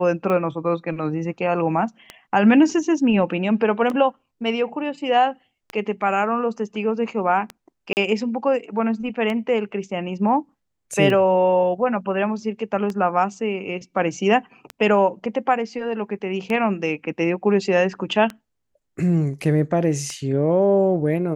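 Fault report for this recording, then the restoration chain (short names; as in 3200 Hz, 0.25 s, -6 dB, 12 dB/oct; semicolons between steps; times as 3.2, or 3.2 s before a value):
tick 33 1/3 rpm -15 dBFS
7.93–7.97 gap 39 ms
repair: de-click; interpolate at 7.93, 39 ms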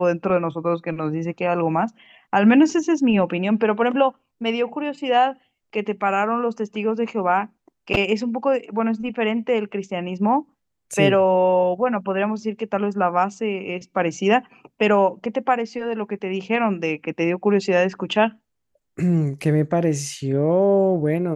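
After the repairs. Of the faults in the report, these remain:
none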